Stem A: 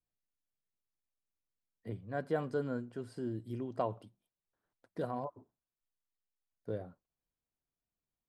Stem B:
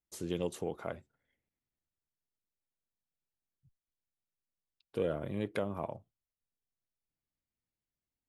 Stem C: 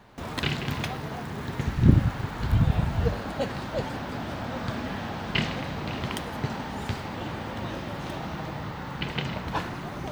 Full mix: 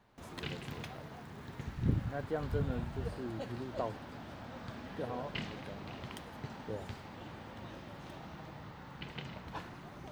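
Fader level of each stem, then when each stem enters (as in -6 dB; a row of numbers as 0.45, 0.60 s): -3.0, -14.5, -14.0 dB; 0.00, 0.10, 0.00 s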